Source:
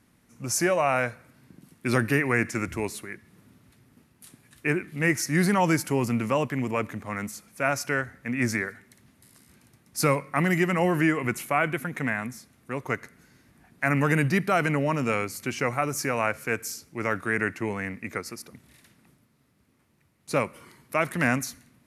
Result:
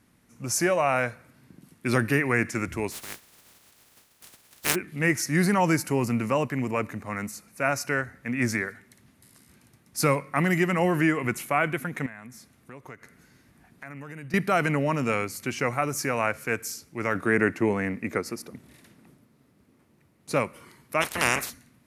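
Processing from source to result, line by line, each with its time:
0:02.91–0:04.74: compressing power law on the bin magnitudes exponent 0.2
0:05.38–0:08.16: notch filter 3,300 Hz, Q 6.8
0:12.06–0:14.34: downward compressor 3 to 1, threshold −43 dBFS
0:17.15–0:20.32: parametric band 350 Hz +7 dB 2.8 octaves
0:21.00–0:21.49: ceiling on every frequency bin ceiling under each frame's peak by 28 dB

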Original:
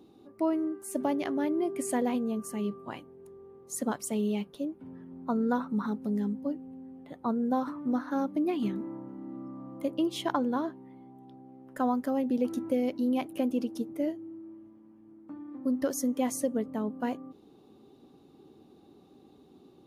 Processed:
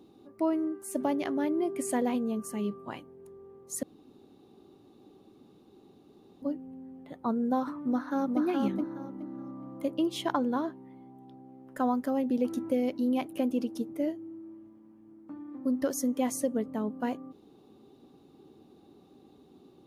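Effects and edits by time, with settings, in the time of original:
0:03.83–0:06.42: fill with room tone
0:07.78–0:08.41: delay throw 420 ms, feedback 25%, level −3 dB

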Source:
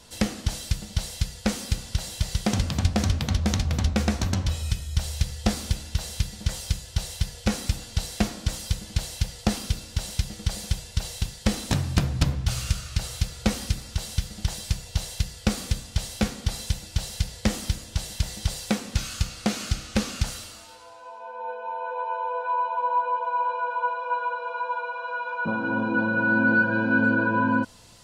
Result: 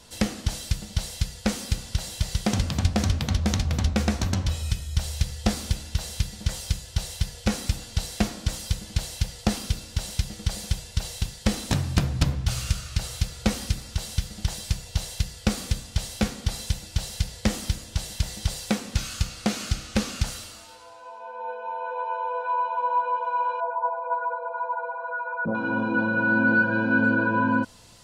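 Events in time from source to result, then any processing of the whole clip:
0:23.60–0:25.55: spectral envelope exaggerated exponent 2

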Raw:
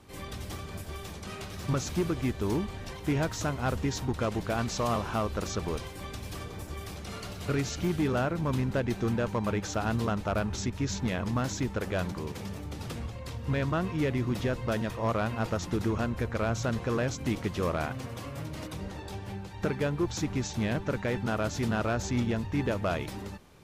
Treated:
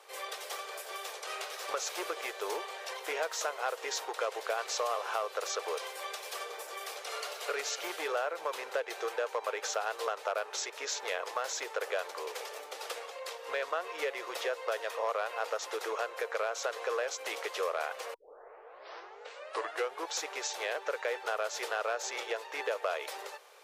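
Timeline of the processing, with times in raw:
0:18.14: tape start 1.99 s
whole clip: elliptic high-pass filter 460 Hz, stop band 50 dB; notch filter 960 Hz, Q 22; downward compressor 2.5 to 1, threshold −36 dBFS; level +4.5 dB

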